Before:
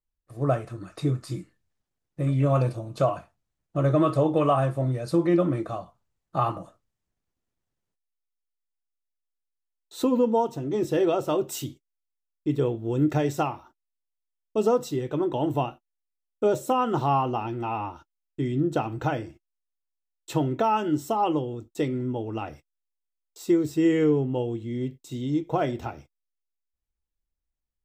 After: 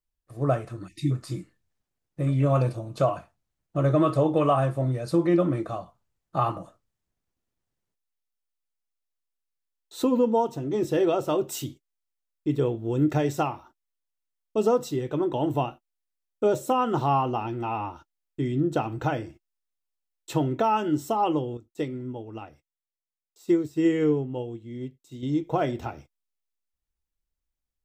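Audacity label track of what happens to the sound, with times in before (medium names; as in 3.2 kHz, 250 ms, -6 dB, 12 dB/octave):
0.880000	1.110000	spectral selection erased 350–1800 Hz
21.570000	25.230000	upward expansion, over -39 dBFS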